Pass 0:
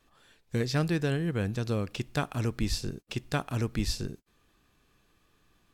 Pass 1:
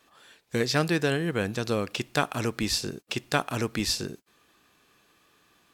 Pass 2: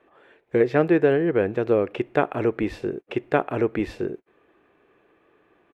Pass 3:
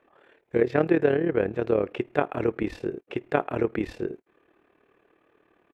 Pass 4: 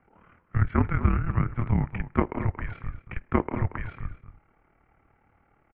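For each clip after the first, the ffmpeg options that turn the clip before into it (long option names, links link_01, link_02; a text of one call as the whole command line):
ffmpeg -i in.wav -af "highpass=frequency=380:poles=1,volume=7.5dB" out.wav
ffmpeg -i in.wav -af "firequalizer=gain_entry='entry(220,0);entry(360,11);entry(1100,0);entry(2100,1);entry(4700,-24)':delay=0.05:min_phase=1" out.wav
ffmpeg -i in.wav -af "tremolo=f=37:d=0.71" out.wav
ffmpeg -i in.wav -filter_complex "[0:a]asplit=2[link_01][link_02];[link_02]adelay=230,highpass=300,lowpass=3400,asoftclip=type=hard:threshold=-12.5dB,volume=-12dB[link_03];[link_01][link_03]amix=inputs=2:normalize=0,highpass=frequency=380:width_type=q:width=0.5412,highpass=frequency=380:width_type=q:width=1.307,lowpass=frequency=2900:width_type=q:width=0.5176,lowpass=frequency=2900:width_type=q:width=0.7071,lowpass=frequency=2900:width_type=q:width=1.932,afreqshift=-360,volume=1.5dB" out.wav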